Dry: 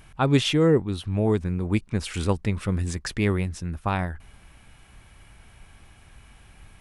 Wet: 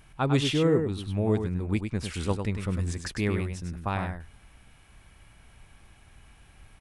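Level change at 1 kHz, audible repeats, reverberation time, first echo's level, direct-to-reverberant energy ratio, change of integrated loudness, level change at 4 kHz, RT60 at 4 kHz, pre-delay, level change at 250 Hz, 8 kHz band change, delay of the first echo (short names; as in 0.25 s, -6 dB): -3.5 dB, 1, none, -6.5 dB, none, -3.5 dB, -3.5 dB, none, none, -3.5 dB, -3.5 dB, 0.101 s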